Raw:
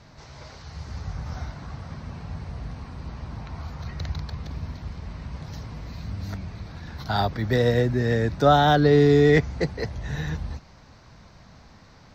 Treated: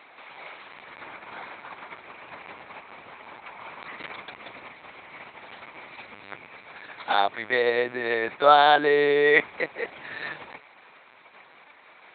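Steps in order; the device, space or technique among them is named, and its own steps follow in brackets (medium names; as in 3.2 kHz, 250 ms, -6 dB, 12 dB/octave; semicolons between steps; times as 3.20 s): talking toy (LPC vocoder at 8 kHz pitch kept; high-pass 620 Hz 12 dB/octave; peaking EQ 2.3 kHz +9 dB 0.31 oct); trim +4 dB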